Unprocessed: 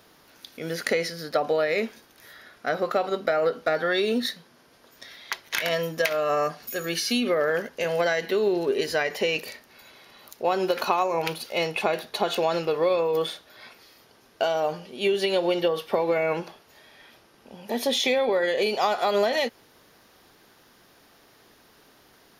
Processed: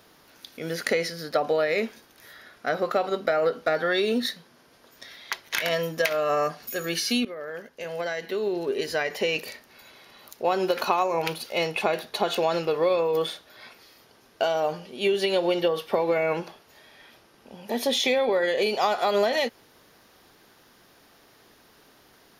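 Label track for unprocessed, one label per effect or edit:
7.250000	9.470000	fade in, from −15.5 dB

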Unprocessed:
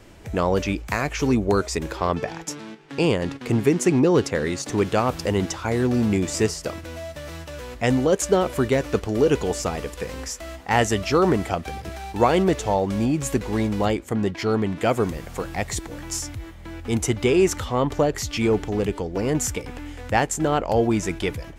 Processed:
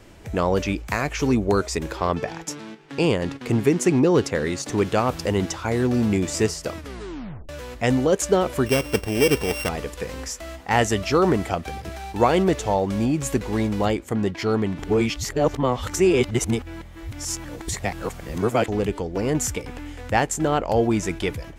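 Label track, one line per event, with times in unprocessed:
6.760000	6.760000	tape stop 0.73 s
8.660000	9.690000	samples sorted by size in blocks of 16 samples
14.790000	18.680000	reverse

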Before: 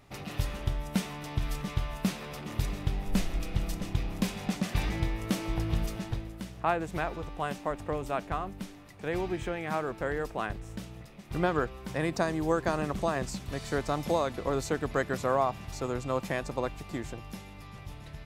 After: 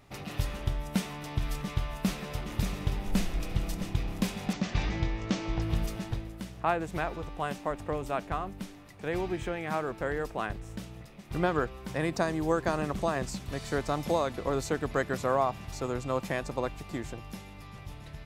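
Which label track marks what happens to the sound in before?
1.500000	2.530000	delay throw 580 ms, feedback 55%, level −6.5 dB
4.530000	5.620000	Butterworth low-pass 6,800 Hz

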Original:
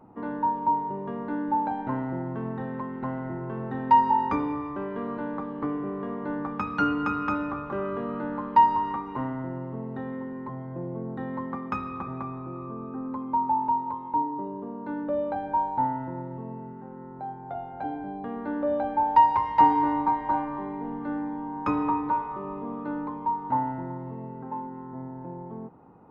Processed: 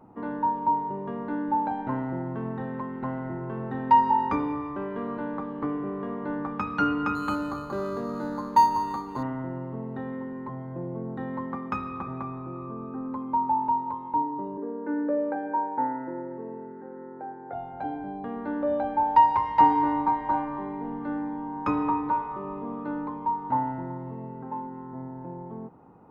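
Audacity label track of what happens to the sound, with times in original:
7.150000	9.230000	linearly interpolated sample-rate reduction rate divided by 8×
14.570000	17.530000	loudspeaker in its box 270–2,200 Hz, peaks and dips at 310 Hz +8 dB, 480 Hz +9 dB, 690 Hz −6 dB, 1,100 Hz −5 dB, 1,700 Hz +7 dB

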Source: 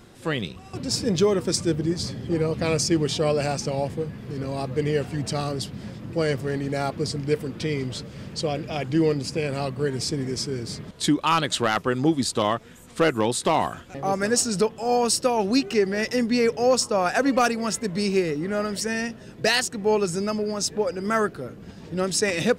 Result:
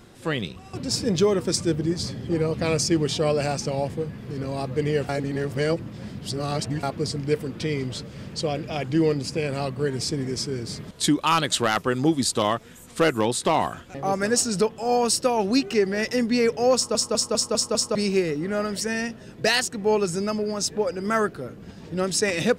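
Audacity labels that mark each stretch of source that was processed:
5.090000	6.830000	reverse
10.760000	13.250000	high-shelf EQ 6,000 Hz +6 dB
16.750000	16.750000	stutter in place 0.20 s, 6 plays

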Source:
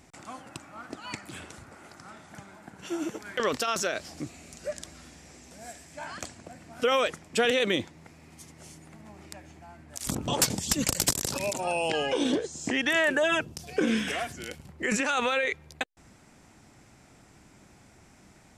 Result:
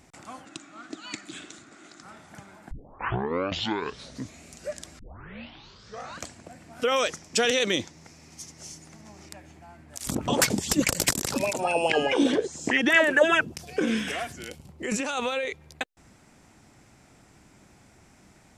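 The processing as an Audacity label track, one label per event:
0.450000	2.030000	loudspeaker in its box 200–8,800 Hz, peaks and dips at 310 Hz +7 dB, 510 Hz −9 dB, 900 Hz −10 dB, 3,700 Hz +8 dB, 6,900 Hz +7 dB
2.710000	2.710000	tape start 1.72 s
4.990000	4.990000	tape start 1.28 s
6.960000	9.290000	parametric band 5,800 Hz +12.5 dB 0.81 octaves
10.140000	13.650000	auto-filter bell 4.8 Hz 210–2,300 Hz +12 dB
14.490000	15.610000	parametric band 1,700 Hz −7.5 dB 0.95 octaves

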